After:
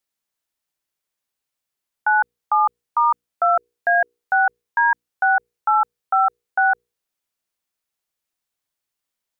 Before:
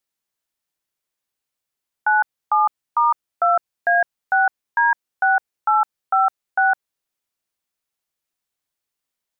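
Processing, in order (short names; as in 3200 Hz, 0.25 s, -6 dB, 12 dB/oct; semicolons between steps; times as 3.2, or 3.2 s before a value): notches 60/120/180/240/300/360/420/480 Hz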